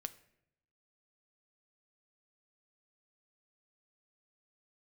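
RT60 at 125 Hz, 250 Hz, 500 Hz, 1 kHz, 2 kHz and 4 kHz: 1.1 s, 0.95 s, 0.85 s, 0.65 s, 0.70 s, 0.55 s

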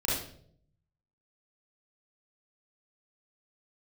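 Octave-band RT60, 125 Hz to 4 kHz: 1.1 s, 0.85 s, 0.75 s, 0.50 s, 0.45 s, 0.45 s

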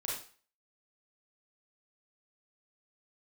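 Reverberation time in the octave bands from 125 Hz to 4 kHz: 0.40 s, 0.35 s, 0.40 s, 0.45 s, 0.45 s, 0.40 s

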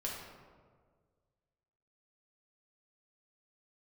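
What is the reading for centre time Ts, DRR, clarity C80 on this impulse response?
73 ms, -4.0 dB, 3.5 dB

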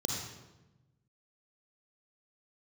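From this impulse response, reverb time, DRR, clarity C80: 1.0 s, 1.0 dB, 4.0 dB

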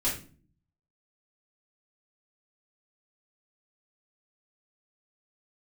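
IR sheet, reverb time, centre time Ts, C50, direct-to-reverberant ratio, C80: 0.40 s, 29 ms, 6.5 dB, -8.5 dB, 12.0 dB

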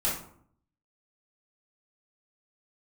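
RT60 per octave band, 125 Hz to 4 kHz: 0.85 s, 0.75 s, 0.65 s, 0.60 s, 0.45 s, 0.35 s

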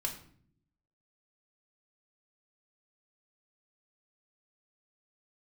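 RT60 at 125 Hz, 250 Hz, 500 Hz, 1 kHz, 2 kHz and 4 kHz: 1.1 s, 1.0 s, 0.65 s, 0.50 s, 0.50 s, 0.40 s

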